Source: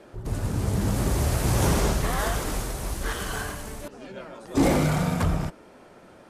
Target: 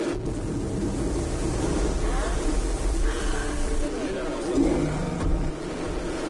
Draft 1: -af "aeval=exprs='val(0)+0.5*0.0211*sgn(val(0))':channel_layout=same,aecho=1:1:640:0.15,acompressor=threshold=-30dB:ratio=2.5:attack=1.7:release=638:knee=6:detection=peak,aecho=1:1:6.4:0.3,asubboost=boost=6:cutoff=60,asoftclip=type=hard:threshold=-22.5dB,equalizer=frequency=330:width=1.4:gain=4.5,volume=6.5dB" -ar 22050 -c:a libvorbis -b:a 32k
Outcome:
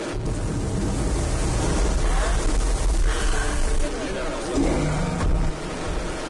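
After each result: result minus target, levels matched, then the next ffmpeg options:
downward compressor: peak gain reduction −5.5 dB; 250 Hz band −3.5 dB
-af "aeval=exprs='val(0)+0.5*0.0211*sgn(val(0))':channel_layout=same,aecho=1:1:640:0.15,acompressor=threshold=-39.5dB:ratio=2.5:attack=1.7:release=638:knee=6:detection=peak,aecho=1:1:6.4:0.3,asubboost=boost=6:cutoff=60,asoftclip=type=hard:threshold=-22.5dB,equalizer=frequency=330:width=1.4:gain=4.5,volume=6.5dB" -ar 22050 -c:a libvorbis -b:a 32k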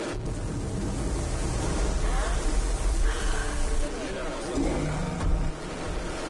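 250 Hz band −3.5 dB
-af "aeval=exprs='val(0)+0.5*0.0211*sgn(val(0))':channel_layout=same,aecho=1:1:640:0.15,acompressor=threshold=-39.5dB:ratio=2.5:attack=1.7:release=638:knee=6:detection=peak,aecho=1:1:6.4:0.3,asubboost=boost=6:cutoff=60,asoftclip=type=hard:threshold=-22.5dB,equalizer=frequency=330:width=1.4:gain=12.5,volume=6.5dB" -ar 22050 -c:a libvorbis -b:a 32k

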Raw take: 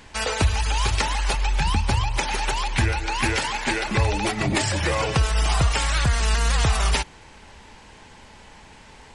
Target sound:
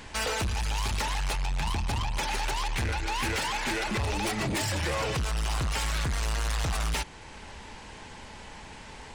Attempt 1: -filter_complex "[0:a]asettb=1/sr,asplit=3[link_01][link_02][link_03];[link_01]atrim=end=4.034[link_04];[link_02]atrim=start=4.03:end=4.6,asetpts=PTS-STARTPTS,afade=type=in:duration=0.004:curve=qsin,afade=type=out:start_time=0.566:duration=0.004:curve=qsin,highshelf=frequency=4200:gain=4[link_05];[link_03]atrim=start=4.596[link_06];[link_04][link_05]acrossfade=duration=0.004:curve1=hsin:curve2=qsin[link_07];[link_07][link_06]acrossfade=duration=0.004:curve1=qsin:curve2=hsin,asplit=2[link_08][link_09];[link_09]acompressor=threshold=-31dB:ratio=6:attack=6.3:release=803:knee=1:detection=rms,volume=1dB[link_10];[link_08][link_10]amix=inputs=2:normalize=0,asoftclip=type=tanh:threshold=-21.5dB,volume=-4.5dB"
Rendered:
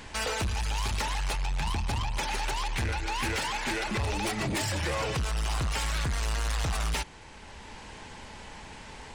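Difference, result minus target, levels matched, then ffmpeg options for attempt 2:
downward compressor: peak gain reduction +7.5 dB
-filter_complex "[0:a]asettb=1/sr,asplit=3[link_01][link_02][link_03];[link_01]atrim=end=4.034[link_04];[link_02]atrim=start=4.03:end=4.6,asetpts=PTS-STARTPTS,afade=type=in:duration=0.004:curve=qsin,afade=type=out:start_time=0.566:duration=0.004:curve=qsin,highshelf=frequency=4200:gain=4[link_05];[link_03]atrim=start=4.596[link_06];[link_04][link_05]acrossfade=duration=0.004:curve1=hsin:curve2=qsin[link_07];[link_07][link_06]acrossfade=duration=0.004:curve1=qsin:curve2=hsin,asplit=2[link_08][link_09];[link_09]acompressor=threshold=-22dB:ratio=6:attack=6.3:release=803:knee=1:detection=rms,volume=1dB[link_10];[link_08][link_10]amix=inputs=2:normalize=0,asoftclip=type=tanh:threshold=-21.5dB,volume=-4.5dB"

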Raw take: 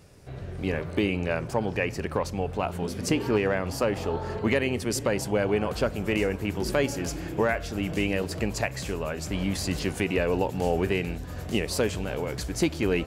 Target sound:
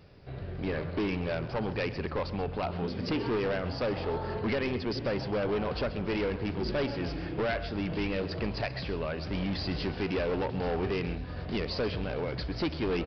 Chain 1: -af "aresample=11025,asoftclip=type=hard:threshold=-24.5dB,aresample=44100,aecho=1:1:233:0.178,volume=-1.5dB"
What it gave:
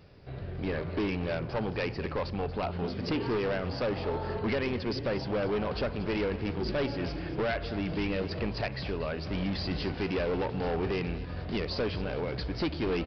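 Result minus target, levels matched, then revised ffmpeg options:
echo 101 ms late
-af "aresample=11025,asoftclip=type=hard:threshold=-24.5dB,aresample=44100,aecho=1:1:132:0.178,volume=-1.5dB"

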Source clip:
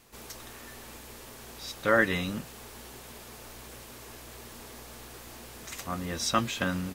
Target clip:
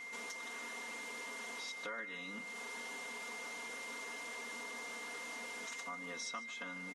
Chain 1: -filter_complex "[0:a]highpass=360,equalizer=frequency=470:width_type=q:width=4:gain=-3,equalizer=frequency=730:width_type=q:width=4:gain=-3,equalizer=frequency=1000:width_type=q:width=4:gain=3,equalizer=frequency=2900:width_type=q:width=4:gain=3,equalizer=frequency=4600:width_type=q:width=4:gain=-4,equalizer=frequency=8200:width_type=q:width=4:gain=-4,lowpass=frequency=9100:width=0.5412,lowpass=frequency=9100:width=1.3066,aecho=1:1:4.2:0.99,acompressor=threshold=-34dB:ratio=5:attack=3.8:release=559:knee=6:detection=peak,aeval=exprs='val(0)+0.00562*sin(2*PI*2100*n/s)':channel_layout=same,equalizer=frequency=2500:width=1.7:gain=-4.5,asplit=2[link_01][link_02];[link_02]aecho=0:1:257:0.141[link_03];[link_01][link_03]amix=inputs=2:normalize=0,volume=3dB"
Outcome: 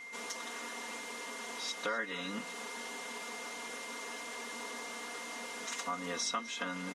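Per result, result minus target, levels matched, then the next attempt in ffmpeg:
echo 109 ms late; downward compressor: peak gain reduction −9 dB
-filter_complex "[0:a]highpass=360,equalizer=frequency=470:width_type=q:width=4:gain=-3,equalizer=frequency=730:width_type=q:width=4:gain=-3,equalizer=frequency=1000:width_type=q:width=4:gain=3,equalizer=frequency=2900:width_type=q:width=4:gain=3,equalizer=frequency=4600:width_type=q:width=4:gain=-4,equalizer=frequency=8200:width_type=q:width=4:gain=-4,lowpass=frequency=9100:width=0.5412,lowpass=frequency=9100:width=1.3066,aecho=1:1:4.2:0.99,acompressor=threshold=-34dB:ratio=5:attack=3.8:release=559:knee=6:detection=peak,aeval=exprs='val(0)+0.00562*sin(2*PI*2100*n/s)':channel_layout=same,equalizer=frequency=2500:width=1.7:gain=-4.5,asplit=2[link_01][link_02];[link_02]aecho=0:1:148:0.141[link_03];[link_01][link_03]amix=inputs=2:normalize=0,volume=3dB"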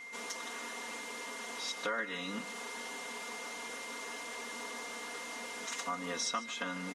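downward compressor: peak gain reduction −9 dB
-filter_complex "[0:a]highpass=360,equalizer=frequency=470:width_type=q:width=4:gain=-3,equalizer=frequency=730:width_type=q:width=4:gain=-3,equalizer=frequency=1000:width_type=q:width=4:gain=3,equalizer=frequency=2900:width_type=q:width=4:gain=3,equalizer=frequency=4600:width_type=q:width=4:gain=-4,equalizer=frequency=8200:width_type=q:width=4:gain=-4,lowpass=frequency=9100:width=0.5412,lowpass=frequency=9100:width=1.3066,aecho=1:1:4.2:0.99,acompressor=threshold=-45.5dB:ratio=5:attack=3.8:release=559:knee=6:detection=peak,aeval=exprs='val(0)+0.00562*sin(2*PI*2100*n/s)':channel_layout=same,equalizer=frequency=2500:width=1.7:gain=-4.5,asplit=2[link_01][link_02];[link_02]aecho=0:1:148:0.141[link_03];[link_01][link_03]amix=inputs=2:normalize=0,volume=3dB"

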